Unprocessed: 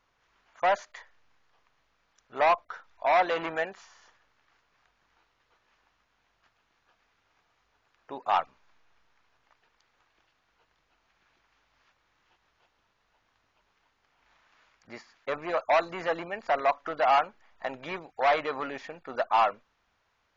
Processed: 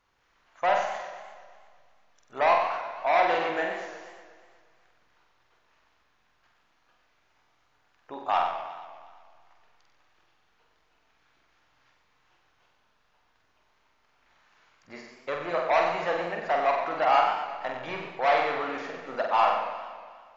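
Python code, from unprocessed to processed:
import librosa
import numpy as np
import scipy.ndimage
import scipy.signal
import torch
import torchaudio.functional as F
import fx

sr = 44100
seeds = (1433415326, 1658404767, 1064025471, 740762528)

y = fx.room_flutter(x, sr, wall_m=8.0, rt60_s=0.74)
y = fx.echo_warbled(y, sr, ms=120, feedback_pct=64, rate_hz=2.8, cents=139, wet_db=-11.0)
y = y * librosa.db_to_amplitude(-1.0)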